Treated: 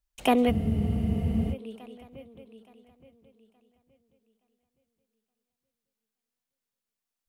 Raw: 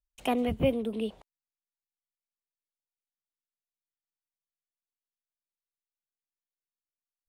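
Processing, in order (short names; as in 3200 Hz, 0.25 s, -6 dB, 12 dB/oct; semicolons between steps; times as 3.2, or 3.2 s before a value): swung echo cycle 0.871 s, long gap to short 3:1, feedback 30%, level -16.5 dB; spectral freeze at 0.53, 0.98 s; gain +6 dB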